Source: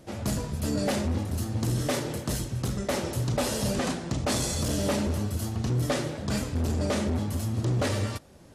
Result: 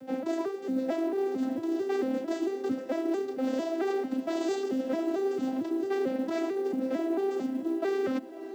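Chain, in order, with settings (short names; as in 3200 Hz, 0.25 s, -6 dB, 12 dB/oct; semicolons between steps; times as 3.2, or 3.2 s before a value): arpeggiated vocoder major triad, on C4, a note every 0.224 s; LPF 2500 Hz 6 dB/oct; notch 1100 Hz, Q 7.5; reverse; compressor 20:1, threshold -34 dBFS, peak gain reduction 15.5 dB; reverse; companded quantiser 8-bit; diffused feedback echo 0.602 s, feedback 47%, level -15 dB; gain +8 dB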